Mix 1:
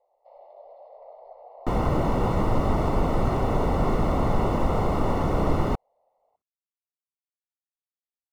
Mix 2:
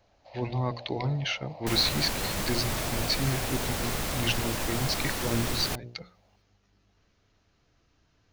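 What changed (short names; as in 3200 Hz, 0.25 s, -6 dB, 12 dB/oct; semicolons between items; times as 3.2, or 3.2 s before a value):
speech: unmuted; second sound -11.0 dB; master: remove polynomial smoothing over 65 samples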